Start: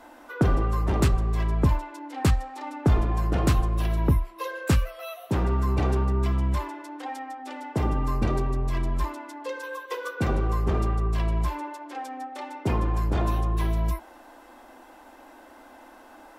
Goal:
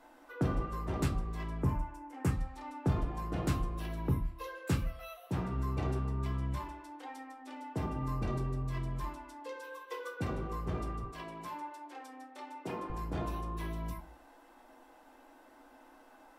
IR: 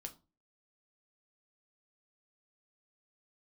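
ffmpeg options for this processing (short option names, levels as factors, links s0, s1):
-filter_complex "[0:a]asettb=1/sr,asplit=3[s0][s1][s2];[s0]atrim=end=1.624[s3];[s1]atrim=start=1.62:end=2.31,asetpts=PTS-STARTPTS,afade=t=in:d=0.004:c=qsin,afade=t=out:st=0.686:d=0.004:c=qsin,equalizer=f=3900:w=1.7:g=-13[s4];[s2]atrim=start=2.306[s5];[s3][s4]acrossfade=d=0.004:c1=hsin:c2=qsin[s6];[s6][s5]acrossfade=d=0.004:c1=qsin:c2=hsin,asettb=1/sr,asplit=3[s7][s8][s9];[s7]atrim=end=11.034[s10];[s8]atrim=start=11.03:end=12.9,asetpts=PTS-STARTPTS,afade=t=in:d=0.004:c=qsin,afade=t=out:st=1.866:d=0.004:c=qsin,highpass=260[s11];[s9]atrim=start=12.896[s12];[s10][s11]acrossfade=d=0.004:c1=hsin:c2=qsin[s13];[s13][s12]acrossfade=d=0.004:c1=qsin:c2=hsin[s14];[1:a]atrim=start_sample=2205,asetrate=41454,aresample=44100[s15];[s14][s15]afir=irnorm=-1:irlink=0,volume=0.531"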